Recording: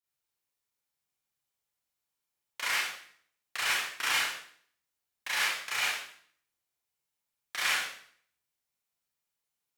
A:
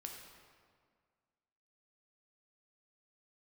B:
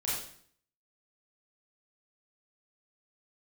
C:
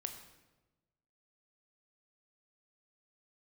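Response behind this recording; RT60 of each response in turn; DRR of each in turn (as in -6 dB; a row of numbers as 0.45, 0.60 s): B; 1.9, 0.55, 1.1 s; 1.0, -8.0, 5.5 dB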